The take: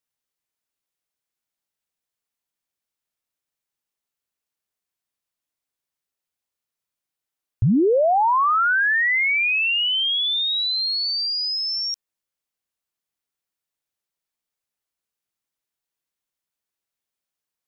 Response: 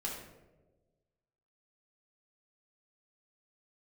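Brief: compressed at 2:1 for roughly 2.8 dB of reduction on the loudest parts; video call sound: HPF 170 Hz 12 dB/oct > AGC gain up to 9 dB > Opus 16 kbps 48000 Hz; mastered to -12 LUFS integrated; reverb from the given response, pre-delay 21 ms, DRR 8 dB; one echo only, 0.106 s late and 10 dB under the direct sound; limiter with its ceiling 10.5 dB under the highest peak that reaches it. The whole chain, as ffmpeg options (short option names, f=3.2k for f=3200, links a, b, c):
-filter_complex "[0:a]acompressor=threshold=-21dB:ratio=2,alimiter=level_in=0.5dB:limit=-24dB:level=0:latency=1,volume=-0.5dB,aecho=1:1:106:0.316,asplit=2[a][b];[1:a]atrim=start_sample=2205,adelay=21[c];[b][c]afir=irnorm=-1:irlink=0,volume=-10dB[d];[a][d]amix=inputs=2:normalize=0,highpass=170,dynaudnorm=m=9dB,volume=8dB" -ar 48000 -c:a libopus -b:a 16k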